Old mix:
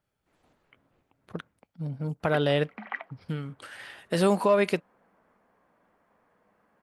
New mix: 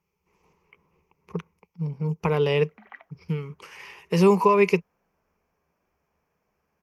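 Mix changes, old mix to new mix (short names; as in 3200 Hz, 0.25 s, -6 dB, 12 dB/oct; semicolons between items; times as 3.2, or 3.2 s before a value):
speech: add ripple EQ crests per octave 0.79, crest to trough 16 dB; background -10.0 dB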